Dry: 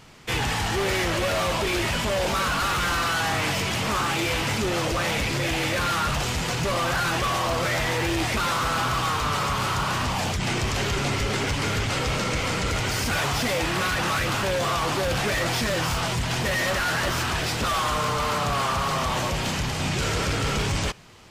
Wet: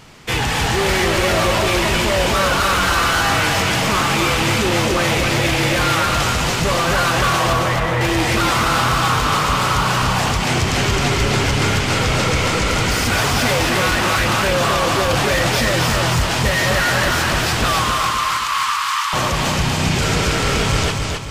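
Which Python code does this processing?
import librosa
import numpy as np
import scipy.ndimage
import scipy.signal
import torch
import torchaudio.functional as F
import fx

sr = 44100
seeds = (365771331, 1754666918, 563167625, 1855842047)

y = fx.air_absorb(x, sr, metres=400.0, at=(7.53, 8.01))
y = fx.ellip_highpass(y, sr, hz=990.0, order=4, stop_db=40, at=(17.84, 19.13))
y = fx.echo_feedback(y, sr, ms=265, feedback_pct=41, wet_db=-3.5)
y = F.gain(torch.from_numpy(y), 6.0).numpy()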